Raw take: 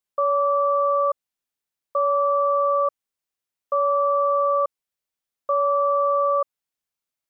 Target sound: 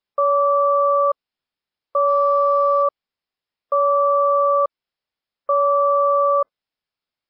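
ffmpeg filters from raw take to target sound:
ffmpeg -i in.wav -filter_complex "[0:a]asplit=3[link_01][link_02][link_03];[link_01]afade=type=out:start_time=2.07:duration=0.02[link_04];[link_02]aeval=exprs='0.2*(cos(1*acos(clip(val(0)/0.2,-1,1)))-cos(1*PI/2))+0.00141*(cos(8*acos(clip(val(0)/0.2,-1,1)))-cos(8*PI/2))':channel_layout=same,afade=type=in:start_time=2.07:duration=0.02,afade=type=out:start_time=2.82:duration=0.02[link_05];[link_03]afade=type=in:start_time=2.82:duration=0.02[link_06];[link_04][link_05][link_06]amix=inputs=3:normalize=0,volume=4dB" -ar 12000 -c:a libmp3lame -b:a 24k out.mp3

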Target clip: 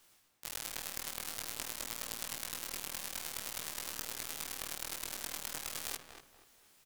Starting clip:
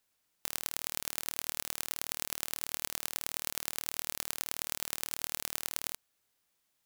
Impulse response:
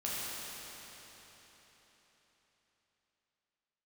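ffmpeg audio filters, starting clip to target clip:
-filter_complex "[0:a]areverse,acompressor=threshold=-48dB:ratio=5,areverse,asplit=4[link_01][link_02][link_03][link_04];[link_02]asetrate=22050,aresample=44100,atempo=2,volume=-6dB[link_05];[link_03]asetrate=35002,aresample=44100,atempo=1.25992,volume=-3dB[link_06];[link_04]asetrate=66075,aresample=44100,atempo=0.66742,volume=-5dB[link_07];[link_01][link_05][link_06][link_07]amix=inputs=4:normalize=0,flanger=delay=17.5:depth=3.5:speed=0.5,asplit=2[link_08][link_09];[link_09]adelay=238,lowpass=frequency=1900:poles=1,volume=-6.5dB,asplit=2[link_10][link_11];[link_11]adelay=238,lowpass=frequency=1900:poles=1,volume=0.33,asplit=2[link_12][link_13];[link_13]adelay=238,lowpass=frequency=1900:poles=1,volume=0.33,asplit=2[link_14][link_15];[link_15]adelay=238,lowpass=frequency=1900:poles=1,volume=0.33[link_16];[link_08][link_10][link_12][link_14][link_16]amix=inputs=5:normalize=0,volume=13.5dB"

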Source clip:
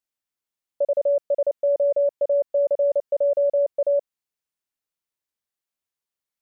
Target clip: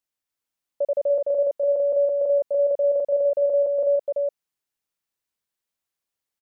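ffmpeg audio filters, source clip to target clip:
ffmpeg -i in.wav -filter_complex "[0:a]aecho=1:1:295:0.668,asplit=2[link_01][link_02];[link_02]alimiter=limit=-22.5dB:level=0:latency=1:release=31,volume=1dB[link_03];[link_01][link_03]amix=inputs=2:normalize=0,volume=-5.5dB" out.wav

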